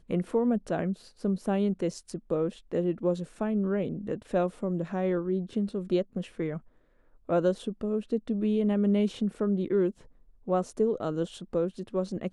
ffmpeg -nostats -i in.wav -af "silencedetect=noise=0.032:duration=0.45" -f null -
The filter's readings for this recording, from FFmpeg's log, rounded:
silence_start: 6.57
silence_end: 7.29 | silence_duration: 0.72
silence_start: 9.90
silence_end: 10.48 | silence_duration: 0.58